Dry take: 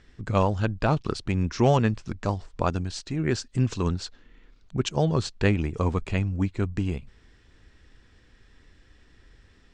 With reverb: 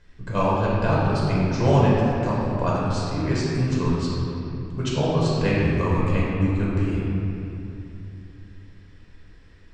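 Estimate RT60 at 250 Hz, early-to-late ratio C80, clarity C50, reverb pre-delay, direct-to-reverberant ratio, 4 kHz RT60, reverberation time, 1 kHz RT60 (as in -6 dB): 3.6 s, -1.5 dB, -3.0 dB, 3 ms, -6.5 dB, 1.7 s, 2.9 s, 2.8 s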